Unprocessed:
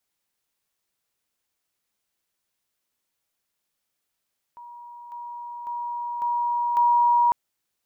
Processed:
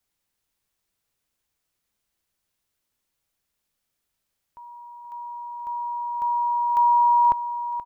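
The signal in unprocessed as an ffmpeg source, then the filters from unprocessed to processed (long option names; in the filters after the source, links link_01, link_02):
-f lavfi -i "aevalsrc='pow(10,(-39.5+6*floor(t/0.55))/20)*sin(2*PI*956*t)':duration=2.75:sample_rate=44100"
-filter_complex "[0:a]lowshelf=frequency=120:gain=11.5,asplit=2[link_01][link_02];[link_02]aecho=0:1:478|956|1434:0.251|0.0829|0.0274[link_03];[link_01][link_03]amix=inputs=2:normalize=0"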